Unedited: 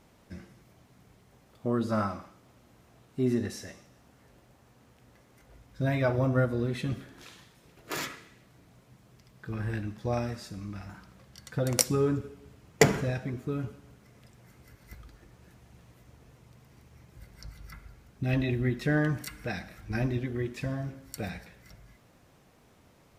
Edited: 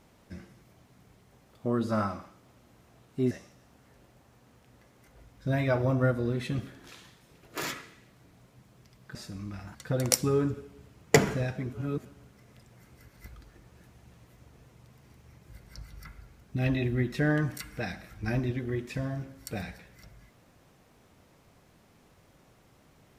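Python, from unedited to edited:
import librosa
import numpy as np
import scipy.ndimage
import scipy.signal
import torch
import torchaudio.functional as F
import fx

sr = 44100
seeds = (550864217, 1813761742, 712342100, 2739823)

y = fx.edit(x, sr, fx.cut(start_s=3.31, length_s=0.34),
    fx.cut(start_s=9.49, length_s=0.88),
    fx.cut(start_s=10.97, length_s=0.45),
    fx.reverse_span(start_s=13.4, length_s=0.32), tone=tone)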